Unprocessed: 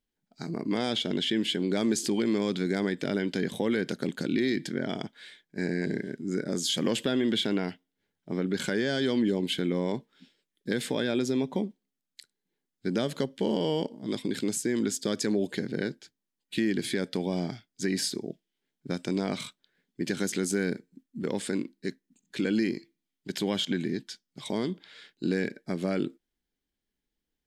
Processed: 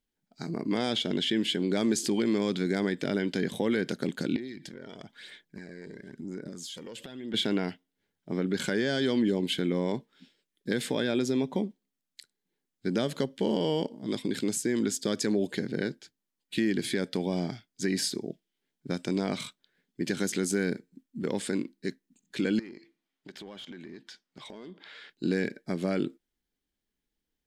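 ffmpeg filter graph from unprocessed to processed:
ffmpeg -i in.wav -filter_complex "[0:a]asettb=1/sr,asplit=3[link_01][link_02][link_03];[link_01]atrim=end=4.364[link_04];[link_02]atrim=start=4.36:end=7.34,asetpts=PTS-STARTPTS,afade=type=in:duration=0.004:curve=qsin,afade=type=out:start_time=2.976:duration=0.004:curve=qsin,acompressor=threshold=-38dB:ratio=12:attack=3.2:release=140:knee=1:detection=peak,aphaser=in_gain=1:out_gain=1:delay=2.2:decay=0.46:speed=1:type=sinusoidal[link_05];[link_03]atrim=start=7.336[link_06];[link_04][link_05]acrossfade=duration=0.004:curve1=hsin:curve2=qsin[link_07];[link_07][link_06]acrossfade=duration=0.004:curve1=qsin:curve2=hsin,asettb=1/sr,asplit=3[link_08][link_09][link_10];[link_08]atrim=end=22.594[link_11];[link_09]atrim=start=22.59:end=25.1,asetpts=PTS-STARTPTS,afade=type=in:duration=0.004:curve=qsin,afade=type=out:start_time=2.506:duration=0.004:curve=qsin,asplit=2[link_12][link_13];[link_13]highpass=frequency=720:poles=1,volume=16dB,asoftclip=type=tanh:threshold=-15.5dB[link_14];[link_12][link_14]amix=inputs=2:normalize=0,lowpass=frequency=1600:poles=1,volume=-6dB,acompressor=threshold=-44dB:ratio=4:attack=3.2:release=140:knee=1:detection=peak[link_15];[link_10]atrim=start=25.096[link_16];[link_11][link_15]acrossfade=duration=0.004:curve1=hsin:curve2=qsin[link_17];[link_17][link_16]acrossfade=duration=0.004:curve1=qsin:curve2=hsin" out.wav

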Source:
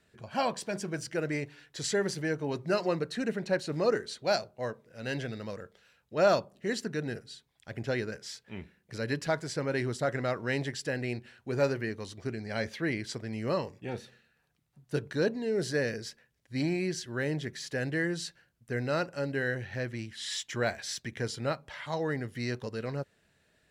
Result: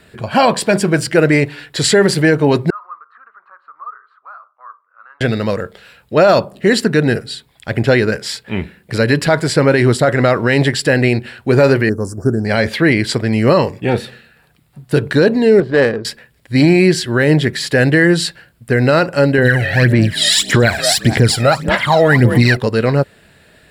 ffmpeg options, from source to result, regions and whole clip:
ffmpeg -i in.wav -filter_complex "[0:a]asettb=1/sr,asplit=3[link_01][link_02][link_03];[link_01]atrim=end=2.704[link_04];[link_02]atrim=start=2.7:end=5.21,asetpts=PTS-STARTPTS,afade=type=in:duration=0.004:curve=qsin,afade=type=out:start_time=2.506:duration=0.004:curve=qsin,acompressor=threshold=-35dB:ratio=4:attack=3.2:release=140:knee=1:detection=peak,asuperpass=centerf=1200:order=4:qfactor=5.4[link_05];[link_03]atrim=start=5.206[link_06];[link_04][link_05]acrossfade=duration=0.004:curve1=hsin:curve2=qsin[link_07];[link_07][link_06]acrossfade=duration=0.004:curve1=qsin:curve2=hsin,asettb=1/sr,asplit=3[link_08][link_09][link_10];[link_08]atrim=end=11.894[link_11];[link_09]atrim=start=11.89:end=12.45,asetpts=PTS-STARTPTS,afade=type=in:duration=0.004:curve=qsin,afade=type=out:start_time=0.556:duration=0.004:curve=qsin,asuperstop=centerf=2900:order=12:qfactor=0.75,equalizer=frequency=990:width_type=o:width=1.3:gain=-7.5[link_12];[link_10]atrim=start=12.446[link_13];[link_11][link_12]acrossfade=duration=0.004:curve1=hsin:curve2=qsin[link_14];[link_14][link_13]acrossfade=duration=0.004:curve1=qsin:curve2=hsin,asettb=1/sr,asplit=3[link_15][link_16][link_17];[link_15]atrim=end=15.604[link_18];[link_16]atrim=start=15.6:end=16.05,asetpts=PTS-STARTPTS,afade=type=in:duration=0.004:curve=qsin,afade=type=out:start_time=0.446:duration=0.004:curve=qsin,lowshelf=frequency=270:gain=-9,adynamicsmooth=sensitivity=2.5:basefreq=570[link_19];[link_17]atrim=start=16.046[link_20];[link_18][link_19]acrossfade=duration=0.004:curve1=hsin:curve2=qsin[link_21];[link_21][link_20]acrossfade=duration=0.004:curve1=qsin:curve2=hsin,asettb=1/sr,asplit=3[link_22][link_23][link_24];[link_22]atrim=end=19.384[link_25];[link_23]atrim=start=19.38:end=22.57,asetpts=PTS-STARTPTS,afade=type=in:duration=0.004:curve=qsin,afade=type=out:start_time=3.186:duration=0.004:curve=qsin,highshelf=frequency=9200:gain=6,asplit=5[link_26][link_27][link_28][link_29][link_30];[link_27]adelay=221,afreqshift=41,volume=-17dB[link_31];[link_28]adelay=442,afreqshift=82,volume=-23.7dB[link_32];[link_29]adelay=663,afreqshift=123,volume=-30.5dB[link_33];[link_30]adelay=884,afreqshift=164,volume=-37.2dB[link_34];[link_26][link_31][link_32][link_33][link_34]amix=inputs=5:normalize=0,atrim=end_sample=140679,aphaser=in_gain=1:out_gain=1:delay=1.6:decay=0.7:speed=1.7:type=sinusoidal[link_35];[link_24]atrim=start=22.566[link_36];[link_25][link_35]acrossfade=duration=0.004:curve1=hsin:curve2=qsin[link_37];[link_37][link_36]acrossfade=duration=0.004:curve1=qsin:curve2=hsin,equalizer=frequency=6100:width=4.3:gain=-12,alimiter=level_in=22.5dB:limit=-1dB:release=50:level=0:latency=1,volume=-1dB" out.wav

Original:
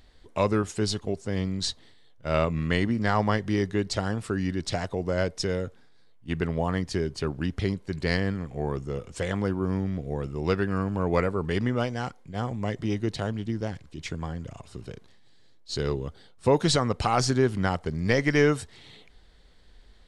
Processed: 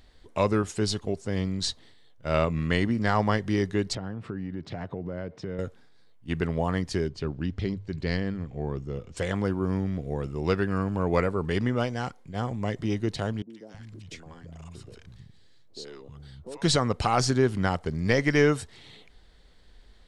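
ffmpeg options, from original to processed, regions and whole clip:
ffmpeg -i in.wav -filter_complex "[0:a]asettb=1/sr,asplit=3[link_01][link_02][link_03];[link_01]atrim=end=3.954[link_04];[link_02]atrim=start=3.95:end=5.59,asetpts=PTS-STARTPTS,afade=type=in:duration=0.004:curve=qsin,afade=type=out:start_time=1.636:duration=0.004:curve=qsin,lowshelf=frequency=290:gain=9.5,acompressor=threshold=-28dB:ratio=12:attack=3.2:release=140:knee=1:detection=peak,highpass=120,lowpass=2500[link_05];[link_03]atrim=start=5.586[link_06];[link_04][link_05]acrossfade=duration=0.004:curve1=hsin:curve2=qsin[link_07];[link_07][link_06]acrossfade=duration=0.004:curve1=qsin:curve2=hsin,asettb=1/sr,asplit=3[link_08][link_09][link_10];[link_08]atrim=end=7.084[link_11];[link_09]atrim=start=7.08:end=9.17,asetpts=PTS-STARTPTS,afade=type=in:duration=0.004:curve=qsin,afade=type=out:start_time=2.086:duration=0.004:curve=qsin,lowpass=4600,equalizer=frequency=1200:width=0.39:gain=-6,bandreject=frequency=50:width_type=h:width=6,bandreject=frequency=100:width_type=h:width=6[link_12];[link_10]atrim=start=9.166[link_13];[link_11][link_12]acrossfade=duration=0.004:curve1=hsin:curve2=qsin[link_14];[link_14][link_13]acrossfade=duration=0.004:curve1=qsin:curve2=hsin,asettb=1/sr,asplit=3[link_15][link_16][link_17];[link_15]atrim=end=13.424[link_18];[link_16]atrim=start=13.42:end=16.62,asetpts=PTS-STARTPTS,afade=type=in:duration=0.004:curve=qsin,afade=type=out:start_time=3.196:duration=0.004:curve=qsin,acompressor=threshold=-40dB:ratio=3:attack=3.2:release=140:knee=1:detection=peak,acrossover=split=200|770[link_19][link_20][link_21];[link_21]adelay=80[link_22];[link_19]adelay=320[link_23];[link_23][link_20][link_22]amix=inputs=3:normalize=0,atrim=end_sample=141120[link_24];[link_17]atrim=start=16.616[link_25];[link_18][link_24]acrossfade=duration=0.004:curve1=hsin:curve2=qsin[link_26];[link_26][link_25]acrossfade=duration=0.004:curve1=qsin:curve2=hsin" out.wav

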